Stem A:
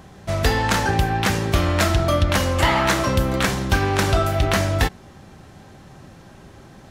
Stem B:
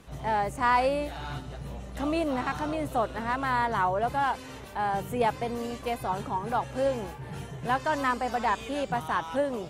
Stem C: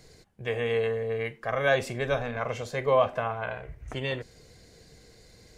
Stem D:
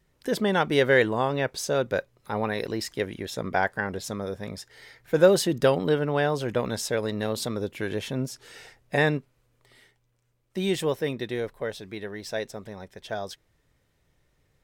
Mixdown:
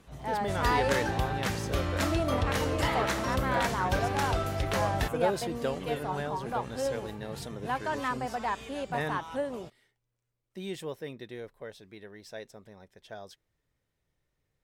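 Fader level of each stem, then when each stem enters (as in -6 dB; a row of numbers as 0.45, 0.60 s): -11.5, -5.0, -12.0, -11.5 dB; 0.20, 0.00, 1.85, 0.00 s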